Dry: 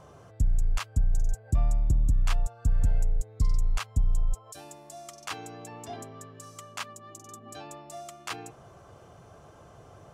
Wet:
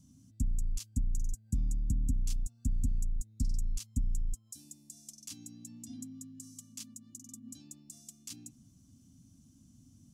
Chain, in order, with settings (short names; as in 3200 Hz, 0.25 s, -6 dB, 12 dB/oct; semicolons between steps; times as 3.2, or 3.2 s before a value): EQ curve 150 Hz 0 dB, 260 Hz +14 dB, 410 Hz -29 dB, 920 Hz -28 dB, 1500 Hz -25 dB, 6000 Hz +7 dB; gain -7.5 dB